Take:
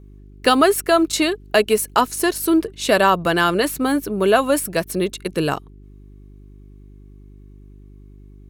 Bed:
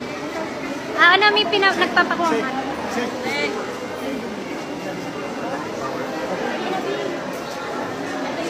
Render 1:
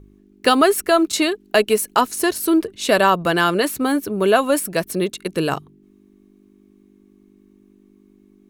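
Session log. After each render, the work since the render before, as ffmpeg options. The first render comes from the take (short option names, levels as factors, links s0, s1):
-af "bandreject=f=50:t=h:w=4,bandreject=f=100:t=h:w=4,bandreject=f=150:t=h:w=4"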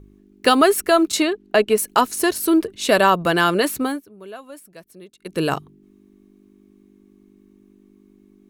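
-filter_complex "[0:a]asettb=1/sr,asplit=3[s0][s1][s2];[s0]atrim=end=1.224[s3];[s1]atrim=start=1.22:end=1.78,asetpts=PTS-STARTPTS,afade=t=in:d=0.004:c=qsin,afade=t=out:st=0.556:d=0.004:c=qsin,lowpass=f=2700:p=1[s4];[s2]atrim=start=1.776[s5];[s3][s4]acrossfade=d=0.004:c1=hsin:c2=qsin[s6];[s6][s5]acrossfade=d=0.004:c1=qsin:c2=hsin,asplit=3[s7][s8][s9];[s7]atrim=end=4.03,asetpts=PTS-STARTPTS,afade=t=out:st=3.79:d=0.24:silence=0.0841395[s10];[s8]atrim=start=4.03:end=5.19,asetpts=PTS-STARTPTS,volume=0.0841[s11];[s9]atrim=start=5.19,asetpts=PTS-STARTPTS,afade=t=in:d=0.24:silence=0.0841395[s12];[s10][s11][s12]concat=n=3:v=0:a=1"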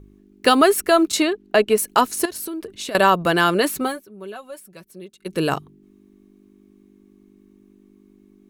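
-filter_complex "[0:a]asettb=1/sr,asplit=3[s0][s1][s2];[s0]atrim=end=2.254[s3];[s1]atrim=start=2.25:end=2.95,asetpts=PTS-STARTPTS,afade=t=in:d=0.004:c=qsin,afade=t=out:st=0.696:d=0.004:c=qsin,acompressor=threshold=0.0501:ratio=16:attack=3.2:release=140:knee=1:detection=peak[s4];[s2]atrim=start=2.946[s5];[s3][s4]acrossfade=d=0.004:c1=hsin:c2=qsin[s6];[s6][s5]acrossfade=d=0.004:c1=qsin:c2=hsin,asettb=1/sr,asplit=3[s7][s8][s9];[s7]atrim=end=3.754[s10];[s8]atrim=start=3.75:end=5.37,asetpts=PTS-STARTPTS,afade=t=in:d=0.004:c=qsin,afade=t=out:st=1.616:d=0.004:c=qsin,aecho=1:1:5.3:0.65,atrim=end_sample=71442[s11];[s9]atrim=start=5.366[s12];[s10][s11]acrossfade=d=0.004:c1=hsin:c2=qsin[s13];[s13][s12]acrossfade=d=0.004:c1=qsin:c2=hsin"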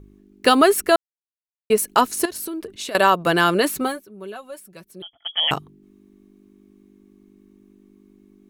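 -filter_complex "[0:a]asettb=1/sr,asplit=3[s0][s1][s2];[s0]atrim=end=2.764[s3];[s1]atrim=start=2.76:end=3.27,asetpts=PTS-STARTPTS,afade=t=in:d=0.004:c=qsin,afade=t=out:st=0.506:d=0.004:c=qsin,lowshelf=f=160:g=-11[s4];[s2]atrim=start=3.266[s5];[s3][s4]acrossfade=d=0.004:c1=hsin:c2=qsin[s6];[s6][s5]acrossfade=d=0.004:c1=qsin:c2=hsin,asettb=1/sr,asplit=3[s7][s8][s9];[s7]atrim=end=5.024[s10];[s8]atrim=start=5.02:end=5.51,asetpts=PTS-STARTPTS,afade=t=in:d=0.004:c=qsin,afade=t=out:st=0.486:d=0.004:c=qsin,lowpass=f=3000:t=q:w=0.5098,lowpass=f=3000:t=q:w=0.6013,lowpass=f=3000:t=q:w=0.9,lowpass=f=3000:t=q:w=2.563,afreqshift=-3500[s11];[s9]atrim=start=5.506[s12];[s10][s11]acrossfade=d=0.004:c1=hsin:c2=qsin[s13];[s13][s12]acrossfade=d=0.004:c1=qsin:c2=hsin,asplit=3[s14][s15][s16];[s14]atrim=end=0.96,asetpts=PTS-STARTPTS,afade=t=out:st=0.956:d=0.004:c=hsin[s17];[s15]atrim=start=0.96:end=1.7,asetpts=PTS-STARTPTS,volume=0[s18];[s16]atrim=start=1.7,asetpts=PTS-STARTPTS,afade=t=in:d=0.004:c=hsin[s19];[s17][s18][s19]concat=n=3:v=0:a=1"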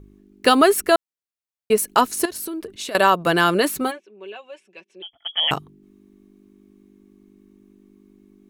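-filter_complex "[0:a]asplit=3[s0][s1][s2];[s0]afade=t=out:st=3.9:d=0.02[s3];[s1]highpass=f=270:w=0.5412,highpass=f=270:w=1.3066,equalizer=f=270:t=q:w=4:g=-10,equalizer=f=640:t=q:w=4:g=-5,equalizer=f=1300:t=q:w=4:g=-10,equalizer=f=2600:t=q:w=4:g=10,equalizer=f=4500:t=q:w=4:g=-10,lowpass=f=5600:w=0.5412,lowpass=f=5600:w=1.3066,afade=t=in:st=3.9:d=0.02,afade=t=out:st=5.12:d=0.02[s4];[s2]afade=t=in:st=5.12:d=0.02[s5];[s3][s4][s5]amix=inputs=3:normalize=0"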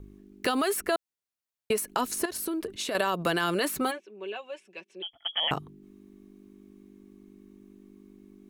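-filter_complex "[0:a]alimiter=limit=0.237:level=0:latency=1:release=65,acrossover=split=580|2200[s0][s1][s2];[s0]acompressor=threshold=0.0355:ratio=4[s3];[s1]acompressor=threshold=0.0398:ratio=4[s4];[s2]acompressor=threshold=0.0251:ratio=4[s5];[s3][s4][s5]amix=inputs=3:normalize=0"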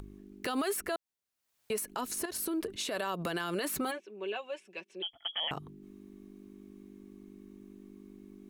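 -af "alimiter=level_in=1.06:limit=0.0631:level=0:latency=1:release=143,volume=0.944,acompressor=mode=upward:threshold=0.00501:ratio=2.5"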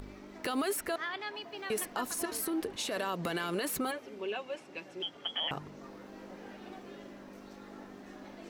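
-filter_complex "[1:a]volume=0.0531[s0];[0:a][s0]amix=inputs=2:normalize=0"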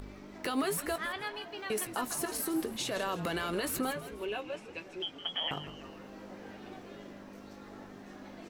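-filter_complex "[0:a]asplit=2[s0][s1];[s1]adelay=19,volume=0.251[s2];[s0][s2]amix=inputs=2:normalize=0,asplit=5[s3][s4][s5][s6][s7];[s4]adelay=161,afreqshift=-99,volume=0.224[s8];[s5]adelay=322,afreqshift=-198,volume=0.0966[s9];[s6]adelay=483,afreqshift=-297,volume=0.0412[s10];[s7]adelay=644,afreqshift=-396,volume=0.0178[s11];[s3][s8][s9][s10][s11]amix=inputs=5:normalize=0"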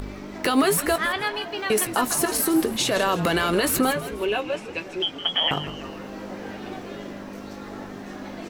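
-af "volume=3.98"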